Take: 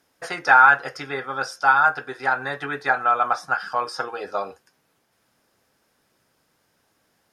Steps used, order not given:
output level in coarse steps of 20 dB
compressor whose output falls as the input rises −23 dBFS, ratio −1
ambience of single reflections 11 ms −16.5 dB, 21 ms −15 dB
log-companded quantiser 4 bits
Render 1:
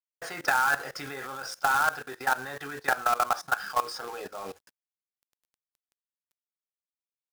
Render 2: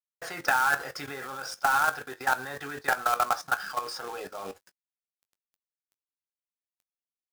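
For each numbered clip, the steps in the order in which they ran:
ambience of single reflections, then log-companded quantiser, then output level in coarse steps, then compressor whose output falls as the input rises
log-companded quantiser, then output level in coarse steps, then compressor whose output falls as the input rises, then ambience of single reflections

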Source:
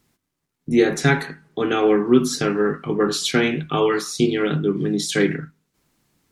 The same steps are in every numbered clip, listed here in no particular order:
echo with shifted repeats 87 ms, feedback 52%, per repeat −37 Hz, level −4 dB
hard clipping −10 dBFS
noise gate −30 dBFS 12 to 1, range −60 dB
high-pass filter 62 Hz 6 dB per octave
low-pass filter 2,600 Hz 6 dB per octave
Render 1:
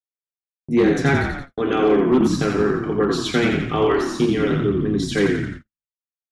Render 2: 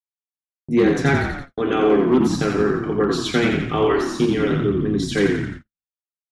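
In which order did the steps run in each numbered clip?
high-pass filter, then echo with shifted repeats, then hard clipping, then low-pass filter, then noise gate
high-pass filter, then hard clipping, then echo with shifted repeats, then noise gate, then low-pass filter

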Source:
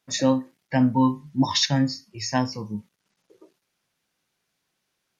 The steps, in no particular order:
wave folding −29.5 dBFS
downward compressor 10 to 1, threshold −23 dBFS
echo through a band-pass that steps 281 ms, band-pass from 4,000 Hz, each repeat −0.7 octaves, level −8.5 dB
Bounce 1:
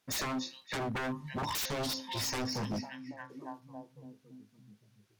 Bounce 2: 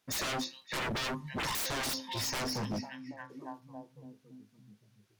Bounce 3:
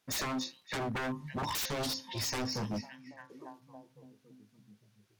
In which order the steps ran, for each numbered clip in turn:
echo through a band-pass that steps, then downward compressor, then wave folding
echo through a band-pass that steps, then wave folding, then downward compressor
downward compressor, then echo through a band-pass that steps, then wave folding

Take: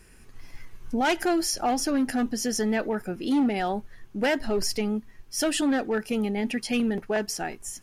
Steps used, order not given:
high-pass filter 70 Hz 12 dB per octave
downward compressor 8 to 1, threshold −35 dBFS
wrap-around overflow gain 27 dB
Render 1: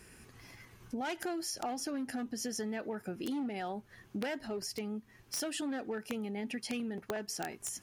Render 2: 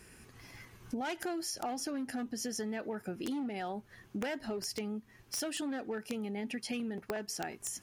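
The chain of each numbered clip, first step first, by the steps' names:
downward compressor, then wrap-around overflow, then high-pass filter
high-pass filter, then downward compressor, then wrap-around overflow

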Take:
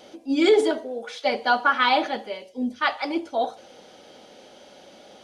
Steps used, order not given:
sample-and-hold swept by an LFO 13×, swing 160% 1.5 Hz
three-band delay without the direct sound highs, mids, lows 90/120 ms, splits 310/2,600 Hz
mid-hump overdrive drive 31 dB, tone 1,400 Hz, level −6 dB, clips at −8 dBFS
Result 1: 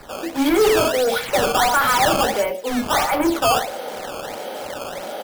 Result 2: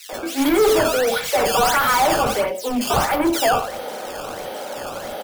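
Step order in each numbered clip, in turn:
mid-hump overdrive, then three-band delay without the direct sound, then sample-and-hold swept by an LFO
mid-hump overdrive, then sample-and-hold swept by an LFO, then three-band delay without the direct sound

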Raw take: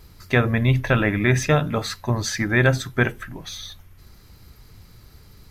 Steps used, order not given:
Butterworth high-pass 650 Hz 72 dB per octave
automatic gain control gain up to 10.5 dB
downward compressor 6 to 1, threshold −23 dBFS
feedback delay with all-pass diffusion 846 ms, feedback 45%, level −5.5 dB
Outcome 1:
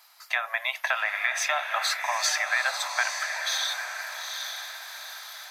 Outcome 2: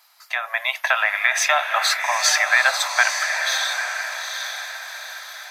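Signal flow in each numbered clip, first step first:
automatic gain control, then Butterworth high-pass, then downward compressor, then feedback delay with all-pass diffusion
Butterworth high-pass, then downward compressor, then automatic gain control, then feedback delay with all-pass diffusion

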